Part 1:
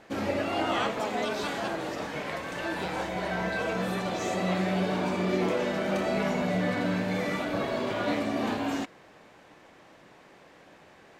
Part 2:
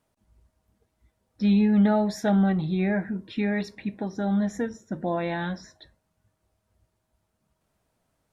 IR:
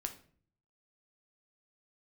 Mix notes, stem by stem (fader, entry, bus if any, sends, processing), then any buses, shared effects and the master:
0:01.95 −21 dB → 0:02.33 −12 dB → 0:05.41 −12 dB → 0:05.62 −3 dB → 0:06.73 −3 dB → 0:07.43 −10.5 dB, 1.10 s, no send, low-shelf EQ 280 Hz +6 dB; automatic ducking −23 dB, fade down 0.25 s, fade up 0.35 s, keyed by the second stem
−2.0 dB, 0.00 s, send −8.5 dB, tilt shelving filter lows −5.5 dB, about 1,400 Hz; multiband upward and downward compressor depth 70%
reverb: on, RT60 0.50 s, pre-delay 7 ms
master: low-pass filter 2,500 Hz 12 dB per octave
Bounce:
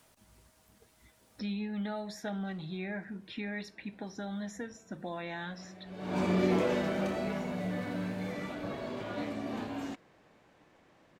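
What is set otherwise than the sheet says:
stem 2 −2.0 dB → −11.5 dB
master: missing low-pass filter 2,500 Hz 12 dB per octave

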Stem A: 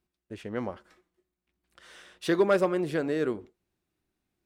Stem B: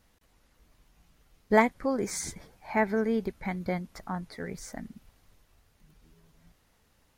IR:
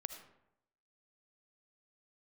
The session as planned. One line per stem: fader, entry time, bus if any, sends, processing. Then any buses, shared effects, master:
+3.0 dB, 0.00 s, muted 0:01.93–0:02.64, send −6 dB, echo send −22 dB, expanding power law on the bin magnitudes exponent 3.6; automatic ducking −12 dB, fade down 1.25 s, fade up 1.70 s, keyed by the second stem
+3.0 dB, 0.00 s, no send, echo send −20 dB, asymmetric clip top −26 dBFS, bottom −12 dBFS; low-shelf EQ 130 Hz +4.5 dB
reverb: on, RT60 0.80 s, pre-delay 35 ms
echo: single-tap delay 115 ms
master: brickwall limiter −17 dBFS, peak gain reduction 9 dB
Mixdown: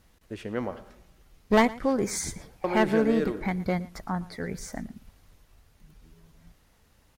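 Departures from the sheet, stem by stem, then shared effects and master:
stem A: missing expanding power law on the bin magnitudes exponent 3.6
master: missing brickwall limiter −17 dBFS, peak gain reduction 9 dB

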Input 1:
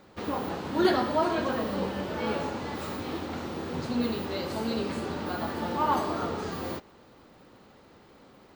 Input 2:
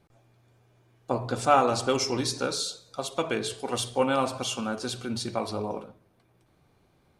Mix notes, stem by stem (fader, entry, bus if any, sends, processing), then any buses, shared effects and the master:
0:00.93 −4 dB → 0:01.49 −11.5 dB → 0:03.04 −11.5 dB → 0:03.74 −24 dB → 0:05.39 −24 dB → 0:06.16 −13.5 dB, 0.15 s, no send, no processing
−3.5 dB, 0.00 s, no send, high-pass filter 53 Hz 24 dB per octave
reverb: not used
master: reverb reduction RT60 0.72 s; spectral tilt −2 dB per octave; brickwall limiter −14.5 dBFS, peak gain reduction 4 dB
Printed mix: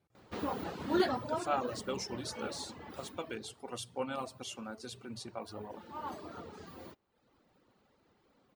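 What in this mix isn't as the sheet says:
stem 2 −3.5 dB → −12.0 dB
master: missing spectral tilt −2 dB per octave

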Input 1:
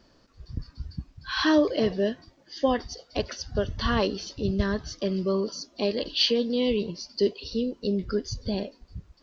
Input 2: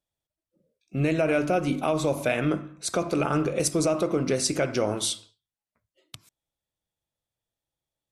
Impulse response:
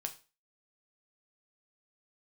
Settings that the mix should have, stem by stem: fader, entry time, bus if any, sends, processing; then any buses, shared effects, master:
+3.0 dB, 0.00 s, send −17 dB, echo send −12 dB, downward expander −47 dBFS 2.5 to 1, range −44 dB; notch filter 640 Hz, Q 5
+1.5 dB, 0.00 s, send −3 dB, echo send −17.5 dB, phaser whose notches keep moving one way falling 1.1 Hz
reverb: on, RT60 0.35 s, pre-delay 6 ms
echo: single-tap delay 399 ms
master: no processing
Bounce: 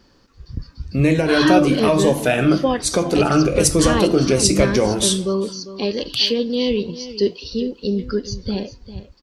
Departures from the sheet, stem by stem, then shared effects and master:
stem 1: missing downward expander −47 dBFS 2.5 to 1, range −44 dB
reverb return +8.0 dB

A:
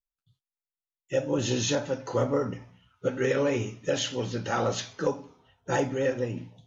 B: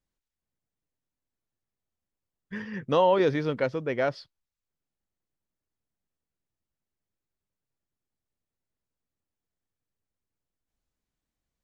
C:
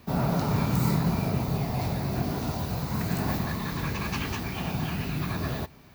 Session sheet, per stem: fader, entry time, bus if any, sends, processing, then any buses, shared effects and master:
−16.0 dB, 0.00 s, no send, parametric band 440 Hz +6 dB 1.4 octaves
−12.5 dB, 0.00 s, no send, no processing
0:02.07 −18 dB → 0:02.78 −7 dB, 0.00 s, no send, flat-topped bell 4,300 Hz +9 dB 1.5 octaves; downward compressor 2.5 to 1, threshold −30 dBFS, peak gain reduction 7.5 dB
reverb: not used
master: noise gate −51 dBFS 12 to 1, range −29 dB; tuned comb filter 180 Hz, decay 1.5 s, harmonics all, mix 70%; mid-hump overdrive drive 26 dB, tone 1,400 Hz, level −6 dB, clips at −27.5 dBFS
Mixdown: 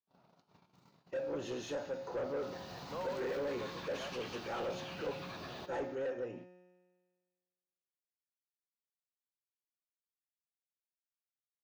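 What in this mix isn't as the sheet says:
stem B −12.5 dB → −23.0 dB
stem C −18.0 dB → −24.5 dB

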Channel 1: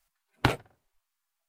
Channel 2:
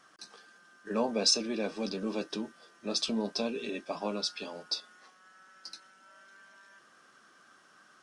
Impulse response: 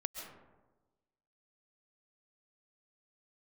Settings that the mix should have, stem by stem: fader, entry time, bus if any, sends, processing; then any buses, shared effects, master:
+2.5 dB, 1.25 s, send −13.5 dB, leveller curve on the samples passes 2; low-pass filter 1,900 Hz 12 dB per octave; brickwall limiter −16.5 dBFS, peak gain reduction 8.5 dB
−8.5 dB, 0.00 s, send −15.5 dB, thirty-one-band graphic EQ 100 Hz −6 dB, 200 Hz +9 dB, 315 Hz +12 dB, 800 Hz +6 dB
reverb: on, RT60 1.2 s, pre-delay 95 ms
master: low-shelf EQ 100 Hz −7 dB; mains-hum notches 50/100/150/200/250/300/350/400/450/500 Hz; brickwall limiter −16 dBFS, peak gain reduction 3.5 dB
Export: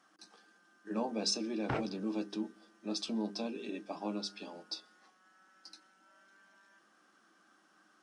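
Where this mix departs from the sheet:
stem 1 +2.5 dB → −8.0 dB
reverb return −9.0 dB

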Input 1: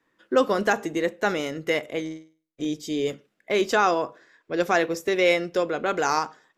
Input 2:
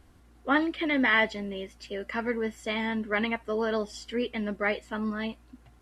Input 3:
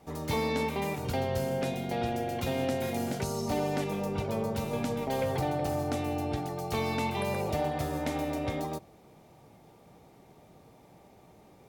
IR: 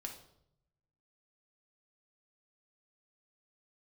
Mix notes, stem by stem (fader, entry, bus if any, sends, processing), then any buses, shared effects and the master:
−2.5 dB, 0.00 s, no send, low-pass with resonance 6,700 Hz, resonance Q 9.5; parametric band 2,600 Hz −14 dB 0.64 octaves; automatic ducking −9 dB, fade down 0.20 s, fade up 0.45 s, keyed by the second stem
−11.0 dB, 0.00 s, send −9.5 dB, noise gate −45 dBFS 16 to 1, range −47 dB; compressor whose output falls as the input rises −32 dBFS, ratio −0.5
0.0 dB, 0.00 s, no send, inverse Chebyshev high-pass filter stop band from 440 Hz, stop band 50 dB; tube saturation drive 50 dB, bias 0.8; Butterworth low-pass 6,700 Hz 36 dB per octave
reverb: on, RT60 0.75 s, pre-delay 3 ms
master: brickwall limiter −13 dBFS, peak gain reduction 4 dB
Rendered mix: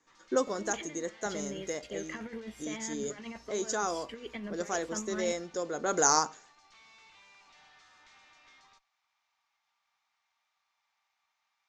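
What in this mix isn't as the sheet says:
stem 3 0.0 dB → −6.5 dB
master: missing brickwall limiter −13 dBFS, peak gain reduction 4 dB

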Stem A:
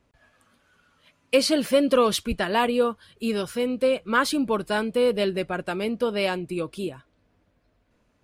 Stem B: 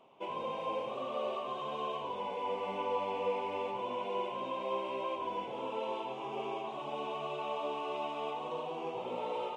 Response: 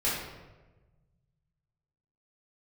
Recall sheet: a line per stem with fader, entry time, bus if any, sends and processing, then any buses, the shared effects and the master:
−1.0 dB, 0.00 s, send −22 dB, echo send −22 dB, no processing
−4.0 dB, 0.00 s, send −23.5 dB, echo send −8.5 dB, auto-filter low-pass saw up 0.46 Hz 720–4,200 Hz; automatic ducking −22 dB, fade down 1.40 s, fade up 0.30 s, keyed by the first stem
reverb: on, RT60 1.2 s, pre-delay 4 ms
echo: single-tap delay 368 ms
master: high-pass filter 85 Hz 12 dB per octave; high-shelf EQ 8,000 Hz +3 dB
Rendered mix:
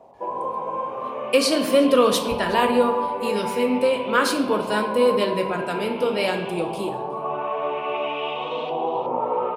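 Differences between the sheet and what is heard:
stem B −4.0 dB → +7.0 dB
reverb return +10.0 dB

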